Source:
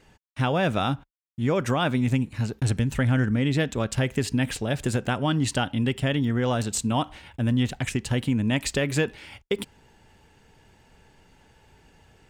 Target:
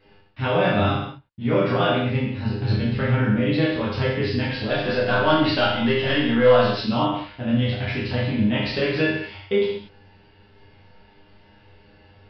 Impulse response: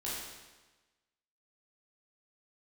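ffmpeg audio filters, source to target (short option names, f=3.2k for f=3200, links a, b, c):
-filter_complex "[0:a]asettb=1/sr,asplit=3[a][b][c];[a]atrim=end=4.694[d];[b]atrim=start=4.69:end=6.89,asetpts=PTS-STARTPTS,afade=t=in:d=0.004:c=qsin,afade=t=out:st=2.196:d=0.004:c=qsin,asplit=2[e][f];[f]highpass=f=720:p=1,volume=14dB,asoftclip=type=tanh:threshold=-11.5dB[g];[e][g]amix=inputs=2:normalize=0,lowpass=f=3.6k:p=1,volume=-6dB[h];[c]atrim=start=6.886[i];[d][h]acrossfade=d=0.004:c1=hsin:c2=qsin[j];[j][i]acrossfade=d=0.004:c1=qsin:c2=hsin,aresample=11025,aresample=44100[k];[1:a]atrim=start_sample=2205,afade=t=out:st=0.41:d=0.01,atrim=end_sample=18522,asetrate=61740,aresample=44100[l];[k][l]afir=irnorm=-1:irlink=0,volume=4dB"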